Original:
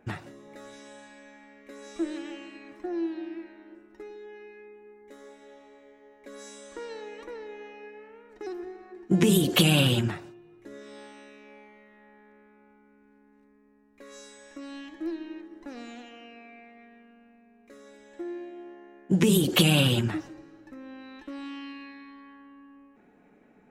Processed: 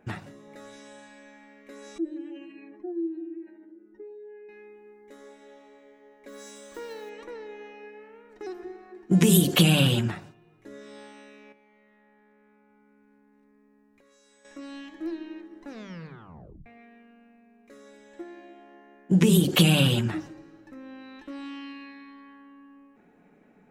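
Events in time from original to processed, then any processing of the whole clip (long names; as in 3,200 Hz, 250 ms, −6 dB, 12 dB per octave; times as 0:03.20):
0:01.98–0:04.49: expanding power law on the bin magnitudes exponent 1.8
0:06.28–0:07.11: one scale factor per block 5 bits
0:09.12–0:09.54: high-shelf EQ 6,500 Hz +9 dB
0:11.52–0:14.45: downward compressor 12 to 1, threshold −57 dBFS
0:15.71: tape stop 0.95 s
whole clip: parametric band 170 Hz +6 dB 0.41 octaves; mains-hum notches 50/100/150/200/250/300/350 Hz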